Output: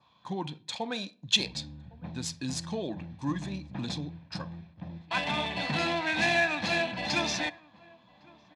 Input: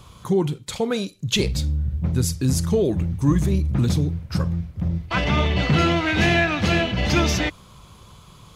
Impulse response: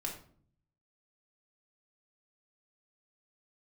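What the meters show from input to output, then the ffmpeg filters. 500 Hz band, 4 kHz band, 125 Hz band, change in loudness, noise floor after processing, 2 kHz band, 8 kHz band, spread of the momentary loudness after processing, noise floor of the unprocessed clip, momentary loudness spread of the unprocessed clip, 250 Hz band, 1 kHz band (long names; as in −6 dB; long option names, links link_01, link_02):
−11.0 dB, −4.0 dB, −18.0 dB, −9.0 dB, −61 dBFS, −5.0 dB, −8.0 dB, 14 LU, −48 dBFS, 7 LU, −12.5 dB, −6.0 dB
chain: -filter_complex "[0:a]agate=range=-7dB:threshold=-35dB:ratio=16:detection=peak,adynamicequalizer=threshold=0.00891:dfrequency=3100:dqfactor=3.4:tfrequency=3100:tqfactor=3.4:attack=5:release=100:ratio=0.375:range=2.5:mode=cutabove:tftype=bell,aecho=1:1:1.2:0.49,acrossover=split=6200[link_01][link_02];[link_02]acrusher=bits=7:mix=0:aa=0.000001[link_03];[link_01][link_03]amix=inputs=2:normalize=0,adynamicsmooth=sensitivity=3:basefreq=4000,highpass=310,equalizer=frequency=400:width_type=q:width=4:gain=-7,equalizer=frequency=590:width_type=q:width=4:gain=-3,equalizer=frequency=1400:width_type=q:width=4:gain=-5,equalizer=frequency=3900:width_type=q:width=4:gain=7,lowpass=frequency=9800:width=0.5412,lowpass=frequency=9800:width=1.3066,asplit=2[link_04][link_05];[link_05]adelay=1108,volume=-24dB,highshelf=frequency=4000:gain=-24.9[link_06];[link_04][link_06]amix=inputs=2:normalize=0,asplit=2[link_07][link_08];[1:a]atrim=start_sample=2205[link_09];[link_08][link_09]afir=irnorm=-1:irlink=0,volume=-17.5dB[link_10];[link_07][link_10]amix=inputs=2:normalize=0,volume=-6dB"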